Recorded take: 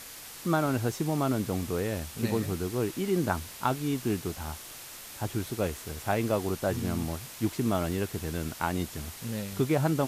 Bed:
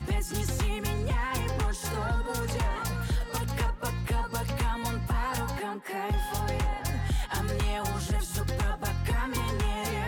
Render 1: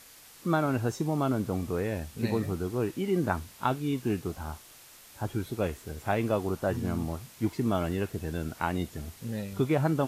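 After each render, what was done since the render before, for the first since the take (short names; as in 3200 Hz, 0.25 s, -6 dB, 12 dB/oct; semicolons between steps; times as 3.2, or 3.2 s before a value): noise print and reduce 8 dB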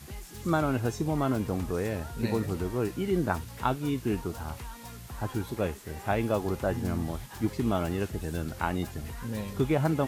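add bed -13.5 dB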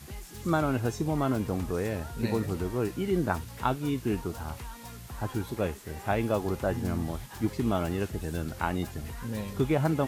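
nothing audible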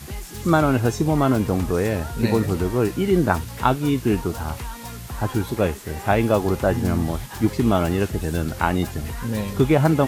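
gain +9 dB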